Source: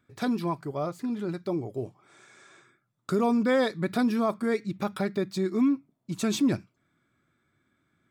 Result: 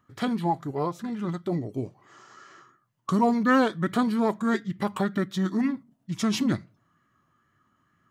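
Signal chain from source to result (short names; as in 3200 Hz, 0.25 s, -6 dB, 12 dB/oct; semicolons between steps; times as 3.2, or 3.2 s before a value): on a send at -23.5 dB: reverb RT60 0.40 s, pre-delay 3 ms; on the sum: formant shift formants -3 st; LFO bell 2.2 Hz 860–2000 Hz +6 dB; gain +2 dB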